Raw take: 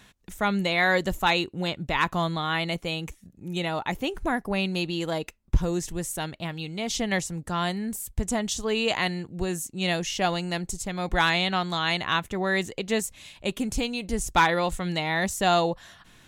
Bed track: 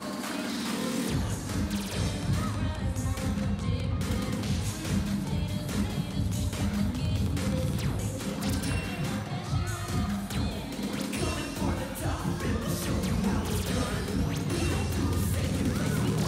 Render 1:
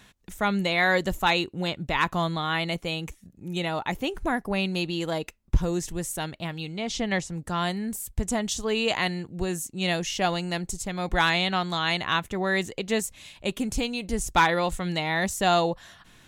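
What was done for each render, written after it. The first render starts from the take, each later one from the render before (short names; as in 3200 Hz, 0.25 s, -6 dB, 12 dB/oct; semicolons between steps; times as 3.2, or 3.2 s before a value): 6.72–7.36 air absorption 60 m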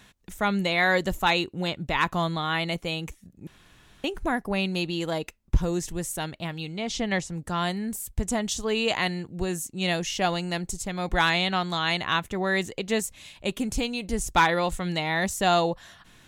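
3.47–4.04 room tone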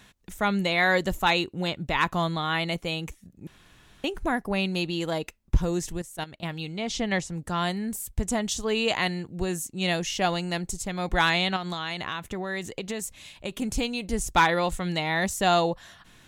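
5.97–6.43 level quantiser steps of 15 dB; 11.56–13.62 compressor, threshold -27 dBFS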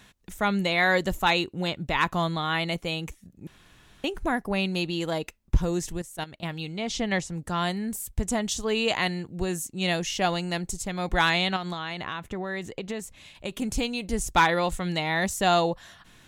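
11.71–13.35 high shelf 4100 Hz -8.5 dB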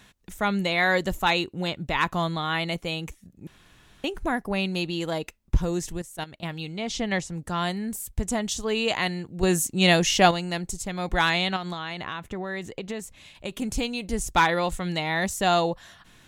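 9.43–10.31 gain +7.5 dB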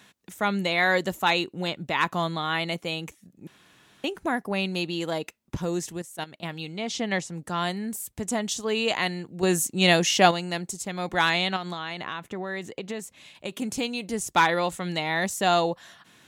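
HPF 160 Hz 12 dB/oct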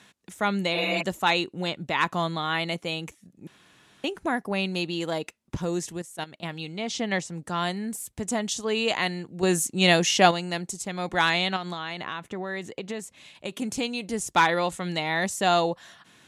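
LPF 12000 Hz 24 dB/oct; 0.77–0.99 spectral repair 220–3000 Hz before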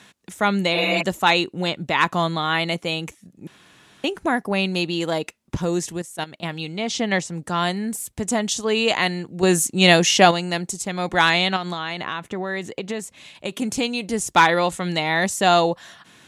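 gain +5.5 dB; limiter -1 dBFS, peak gain reduction 2.5 dB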